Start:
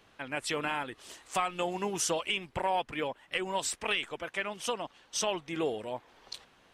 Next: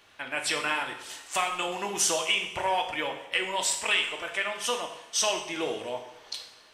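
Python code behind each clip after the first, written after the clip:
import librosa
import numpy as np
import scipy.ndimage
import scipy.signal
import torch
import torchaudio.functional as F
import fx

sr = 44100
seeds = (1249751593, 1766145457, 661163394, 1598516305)

y = fx.tilt_shelf(x, sr, db=-5.5, hz=650.0)
y = fx.rev_double_slope(y, sr, seeds[0], early_s=0.68, late_s=2.4, knee_db=-18, drr_db=2.5)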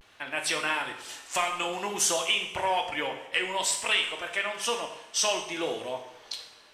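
y = fx.vibrato(x, sr, rate_hz=0.56, depth_cents=58.0)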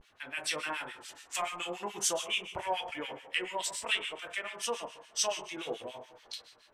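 y = fx.harmonic_tremolo(x, sr, hz=7.0, depth_pct=100, crossover_hz=1400.0)
y = F.gain(torch.from_numpy(y), -2.5).numpy()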